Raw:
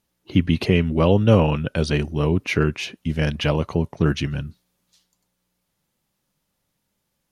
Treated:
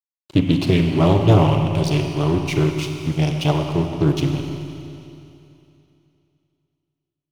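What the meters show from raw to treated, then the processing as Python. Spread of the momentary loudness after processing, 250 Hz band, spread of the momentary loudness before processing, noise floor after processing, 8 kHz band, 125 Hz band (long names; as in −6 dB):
12 LU, +2.5 dB, 10 LU, below −85 dBFS, +3.0 dB, +3.5 dB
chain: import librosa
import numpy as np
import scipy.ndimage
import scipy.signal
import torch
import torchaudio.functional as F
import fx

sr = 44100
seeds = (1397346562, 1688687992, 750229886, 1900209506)

y = fx.fixed_phaser(x, sr, hz=320.0, stages=8)
y = np.sign(y) * np.maximum(np.abs(y) - 10.0 ** (-37.5 / 20.0), 0.0)
y = fx.rev_schroeder(y, sr, rt60_s=2.8, comb_ms=32, drr_db=3.5)
y = fx.doppler_dist(y, sr, depth_ms=0.37)
y = y * 10.0 ** (5.0 / 20.0)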